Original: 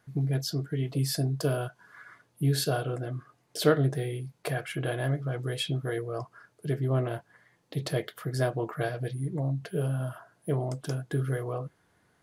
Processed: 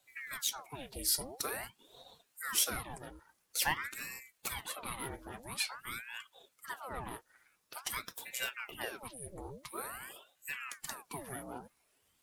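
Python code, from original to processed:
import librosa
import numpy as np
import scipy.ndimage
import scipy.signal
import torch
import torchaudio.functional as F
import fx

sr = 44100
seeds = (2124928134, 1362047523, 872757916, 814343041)

y = fx.spec_quant(x, sr, step_db=15)
y = fx.riaa(y, sr, side='recording')
y = fx.ring_lfo(y, sr, carrier_hz=1200.0, swing_pct=85, hz=0.48)
y = F.gain(torch.from_numpy(y), -5.0).numpy()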